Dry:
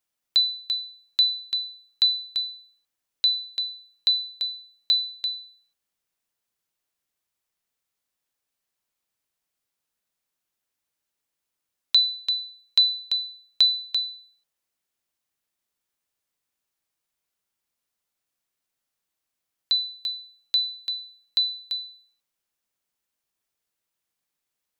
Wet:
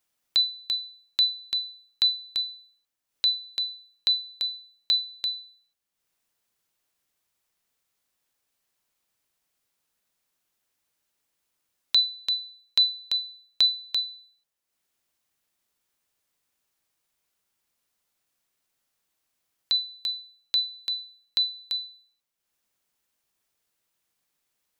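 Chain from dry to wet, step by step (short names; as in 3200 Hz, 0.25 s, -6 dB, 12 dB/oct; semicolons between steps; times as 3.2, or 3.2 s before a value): dynamic EQ 5100 Hz, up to -4 dB, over -33 dBFS, Q 2.4; in parallel at -2 dB: compressor, threshold -34 dBFS, peak gain reduction 17 dB; on the sum: transient shaper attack -3 dB, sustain -7 dB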